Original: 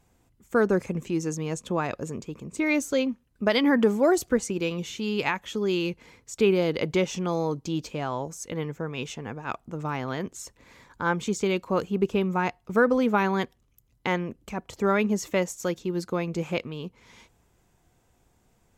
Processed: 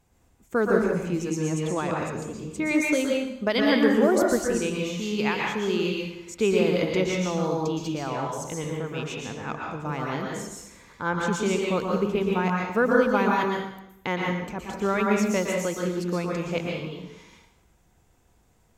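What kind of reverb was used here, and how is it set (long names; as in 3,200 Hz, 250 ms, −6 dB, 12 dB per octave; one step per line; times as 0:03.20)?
dense smooth reverb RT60 0.82 s, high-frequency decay 0.9×, pre-delay 105 ms, DRR −1.5 dB
level −2 dB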